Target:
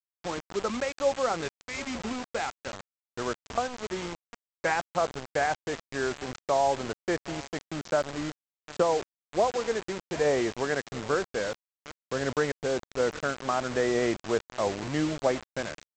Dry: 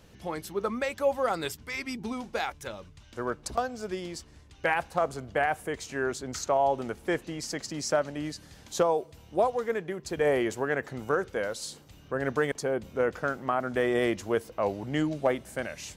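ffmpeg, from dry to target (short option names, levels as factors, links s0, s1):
-af "lowpass=2300,aecho=1:1:754|1508:0.112|0.0191,aresample=16000,acrusher=bits=5:mix=0:aa=0.000001,aresample=44100"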